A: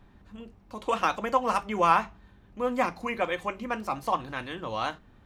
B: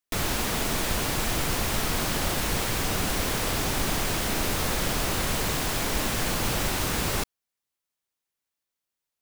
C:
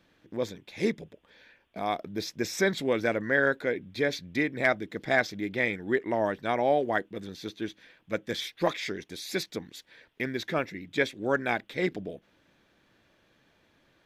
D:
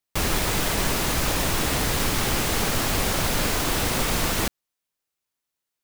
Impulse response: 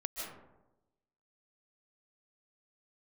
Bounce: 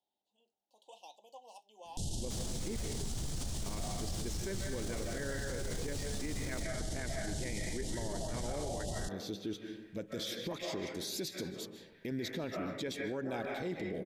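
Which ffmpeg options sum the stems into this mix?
-filter_complex "[0:a]highpass=860,volume=-18dB[a];[1:a]lowpass=f=9k:w=0.5412,lowpass=f=9k:w=1.3066,bass=f=250:g=15,treble=f=4k:g=12,adelay=1850,volume=-7.5dB[b];[2:a]adelay=1850,volume=0dB,asplit=2[c][d];[d]volume=-9.5dB[e];[3:a]alimiter=limit=-16dB:level=0:latency=1:release=337,adelay=2150,volume=-19dB[f];[a][b][c]amix=inputs=3:normalize=0,asuperstop=centerf=1600:order=12:qfactor=0.79,acompressor=threshold=-27dB:ratio=6,volume=0dB[g];[4:a]atrim=start_sample=2205[h];[e][h]afir=irnorm=-1:irlink=0[i];[f][g][i]amix=inputs=3:normalize=0,alimiter=level_in=5.5dB:limit=-24dB:level=0:latency=1:release=40,volume=-5.5dB"

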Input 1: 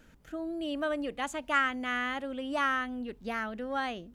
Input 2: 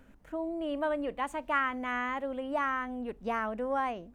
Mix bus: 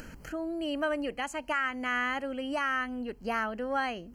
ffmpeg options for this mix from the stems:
-filter_complex "[0:a]alimiter=limit=-23.5dB:level=0:latency=1:release=272,acompressor=mode=upward:threshold=-38dB:ratio=2.5,volume=2.5dB[a];[1:a]volume=-1,volume=-10dB[b];[a][b]amix=inputs=2:normalize=0,asuperstop=centerf=3600:order=12:qfactor=4.7"

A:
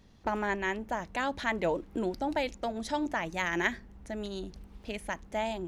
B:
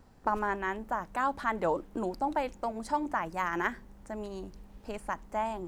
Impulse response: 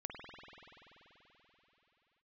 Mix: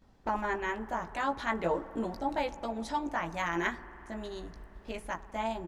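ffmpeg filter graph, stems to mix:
-filter_complex "[0:a]agate=range=-6dB:threshold=-47dB:ratio=16:detection=peak,volume=-4.5dB[a];[1:a]highshelf=f=8k:g=-10,adelay=18,volume=-6dB,asplit=2[b][c];[c]volume=-7dB[d];[2:a]atrim=start_sample=2205[e];[d][e]afir=irnorm=-1:irlink=0[f];[a][b][f]amix=inputs=3:normalize=0"

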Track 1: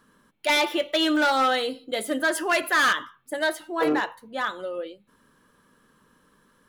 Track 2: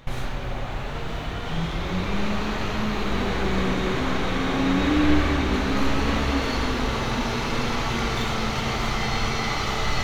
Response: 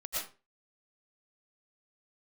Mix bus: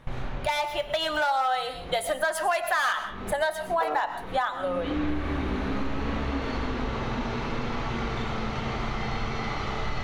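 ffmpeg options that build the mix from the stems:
-filter_complex "[0:a]dynaudnorm=f=220:g=11:m=10dB,highpass=f=760:t=q:w=3.5,volume=-5dB,asplit=3[a][b][c];[b]volume=-15.5dB[d];[1:a]aemphasis=mode=reproduction:type=75fm,volume=-4dB[e];[c]apad=whole_len=442509[f];[e][f]sidechaincompress=threshold=-30dB:ratio=8:attack=8.1:release=390[g];[2:a]atrim=start_sample=2205[h];[d][h]afir=irnorm=-1:irlink=0[i];[a][g][i]amix=inputs=3:normalize=0,acompressor=threshold=-24dB:ratio=5"

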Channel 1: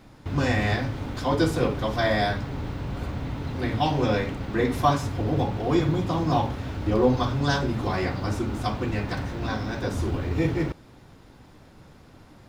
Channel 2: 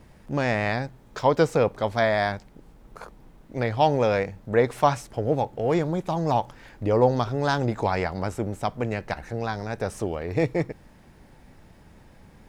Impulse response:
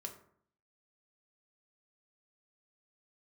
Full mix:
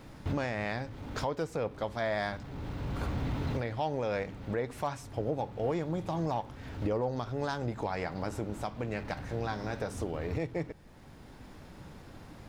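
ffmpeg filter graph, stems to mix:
-filter_complex "[0:a]asoftclip=type=tanh:threshold=-23.5dB,volume=-0.5dB[a];[1:a]asoftclip=type=hard:threshold=-8.5dB,volume=-3dB,asplit=2[b][c];[c]apad=whole_len=550384[d];[a][d]sidechaincompress=threshold=-33dB:ratio=5:attack=24:release=996[e];[e][b]amix=inputs=2:normalize=0,alimiter=limit=-22.5dB:level=0:latency=1:release=428"

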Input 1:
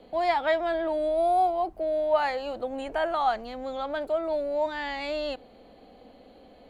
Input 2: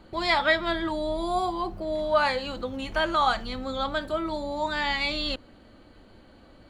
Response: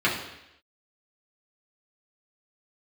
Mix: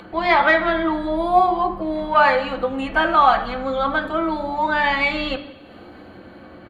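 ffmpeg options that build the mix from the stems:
-filter_complex "[0:a]dynaudnorm=f=440:g=7:m=11.5dB,volume=-7.5dB,asplit=2[a][b];[1:a]lowpass=1.9k,acontrast=86,adelay=1.2,volume=1dB,asplit=2[c][d];[d]volume=-17dB[e];[b]apad=whole_len=295187[f];[c][f]sidechaingate=range=-33dB:threshold=-46dB:ratio=16:detection=peak[g];[2:a]atrim=start_sample=2205[h];[e][h]afir=irnorm=-1:irlink=0[i];[a][g][i]amix=inputs=3:normalize=0,lowshelf=f=480:g=-5,acompressor=mode=upward:threshold=-32dB:ratio=2.5"

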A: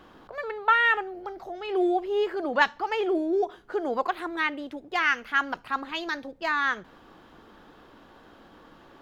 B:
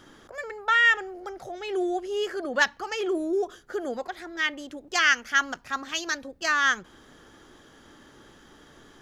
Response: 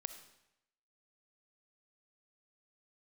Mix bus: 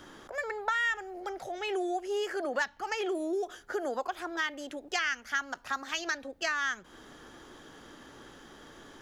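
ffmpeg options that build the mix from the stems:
-filter_complex "[0:a]volume=-6.5dB[a];[1:a]volume=-1,volume=1dB[b];[a][b]amix=inputs=2:normalize=0,acrossover=split=230|5900[c][d][e];[c]acompressor=threshold=-58dB:ratio=4[f];[d]acompressor=threshold=-30dB:ratio=4[g];[e]acompressor=threshold=-49dB:ratio=4[h];[f][g][h]amix=inputs=3:normalize=0"

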